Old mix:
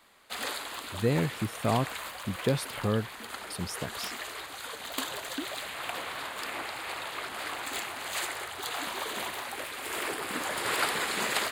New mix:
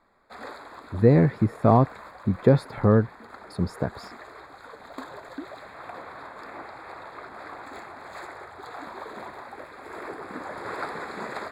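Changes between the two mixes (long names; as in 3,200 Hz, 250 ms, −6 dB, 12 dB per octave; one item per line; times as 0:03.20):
speech +10.0 dB
master: add moving average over 15 samples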